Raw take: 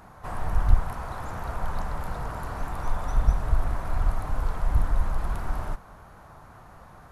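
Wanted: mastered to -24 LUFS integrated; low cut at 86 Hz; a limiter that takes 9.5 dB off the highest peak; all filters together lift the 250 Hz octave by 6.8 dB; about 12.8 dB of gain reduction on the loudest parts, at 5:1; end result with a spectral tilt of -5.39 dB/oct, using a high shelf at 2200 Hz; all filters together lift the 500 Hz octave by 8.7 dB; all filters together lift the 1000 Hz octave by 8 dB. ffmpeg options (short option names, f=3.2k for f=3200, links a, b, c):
-af "highpass=86,equalizer=f=250:t=o:g=7.5,equalizer=f=500:t=o:g=7,equalizer=f=1k:t=o:g=5.5,highshelf=f=2.2k:g=8.5,acompressor=threshold=-36dB:ratio=5,volume=19.5dB,alimiter=limit=-15dB:level=0:latency=1"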